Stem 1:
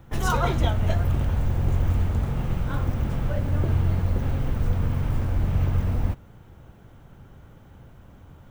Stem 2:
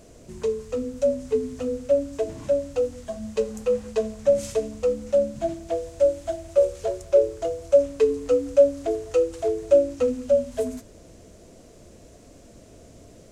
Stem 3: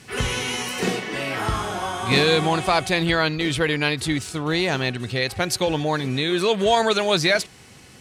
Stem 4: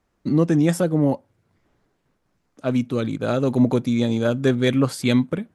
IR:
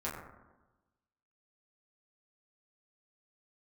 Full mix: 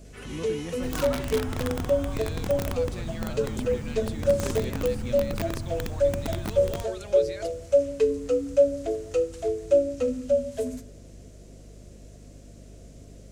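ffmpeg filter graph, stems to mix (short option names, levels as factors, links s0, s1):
-filter_complex "[0:a]equalizer=f=540:w=1.8:g=-6,aeval=exprs='(mod(5.62*val(0)+1,2)-1)/5.62':c=same,adelay=700,volume=0.335[s0];[1:a]equalizer=f=960:t=o:w=1.1:g=-6,aeval=exprs='val(0)+0.00631*(sin(2*PI*50*n/s)+sin(2*PI*2*50*n/s)/2+sin(2*PI*3*50*n/s)/3+sin(2*PI*4*50*n/s)/4+sin(2*PI*5*50*n/s)/5)':c=same,volume=0.75,asplit=2[s1][s2];[s2]volume=0.141[s3];[2:a]acompressor=threshold=0.0224:ratio=1.5,alimiter=limit=0.1:level=0:latency=1,adelay=50,volume=0.224[s4];[3:a]volume=0.119[s5];[4:a]atrim=start_sample=2205[s6];[s3][s6]afir=irnorm=-1:irlink=0[s7];[s0][s1][s4][s5][s7]amix=inputs=5:normalize=0"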